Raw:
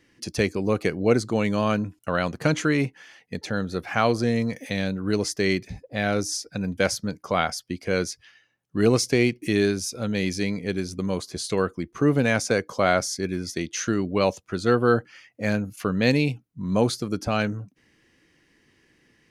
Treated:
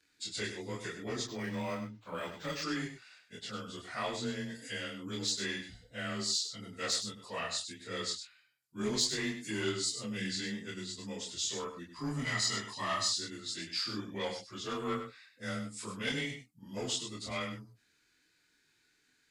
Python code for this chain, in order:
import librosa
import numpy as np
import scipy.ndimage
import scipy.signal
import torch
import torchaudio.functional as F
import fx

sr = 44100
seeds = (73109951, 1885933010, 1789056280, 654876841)

p1 = fx.partial_stretch(x, sr, pct=92)
p2 = fx.comb(p1, sr, ms=1.0, depth=0.76, at=(11.96, 13.08))
p3 = fx.fold_sine(p2, sr, drive_db=8, ceiling_db=-7.0)
p4 = p2 + F.gain(torch.from_numpy(p3), -10.0).numpy()
p5 = fx.chorus_voices(p4, sr, voices=6, hz=0.86, base_ms=26, depth_ms=2.5, mix_pct=45)
p6 = scipy.signal.lfilter([1.0, -0.9], [1.0], p5)
p7 = p6 + fx.echo_single(p6, sr, ms=100, db=-9.0, dry=0)
y = fx.resample_linear(p7, sr, factor=4, at=(1.27, 2.63))